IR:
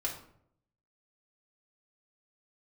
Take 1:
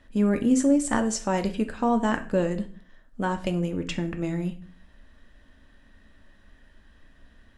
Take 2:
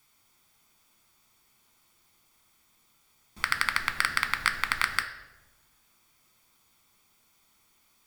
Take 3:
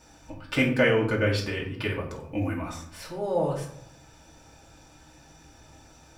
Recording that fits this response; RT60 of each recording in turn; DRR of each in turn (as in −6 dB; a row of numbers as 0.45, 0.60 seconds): 3; 0.45, 1.1, 0.65 seconds; 6.0, 6.5, −3.5 decibels